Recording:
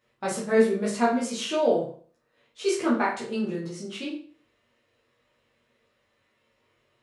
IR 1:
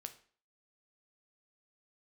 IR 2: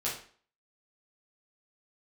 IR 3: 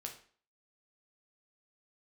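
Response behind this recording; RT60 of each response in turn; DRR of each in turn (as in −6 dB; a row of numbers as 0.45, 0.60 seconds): 2; 0.45, 0.45, 0.45 seconds; 7.5, −7.5, 1.5 decibels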